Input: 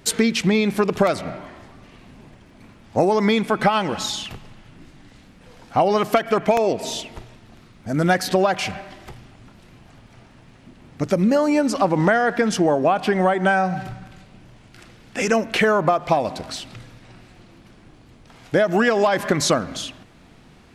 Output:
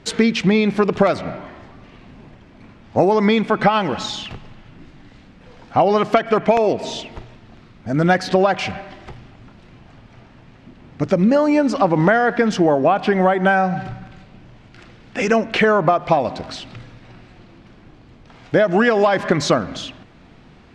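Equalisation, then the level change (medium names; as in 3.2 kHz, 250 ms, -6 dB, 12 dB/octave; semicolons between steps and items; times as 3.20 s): distance through air 110 m; +3.0 dB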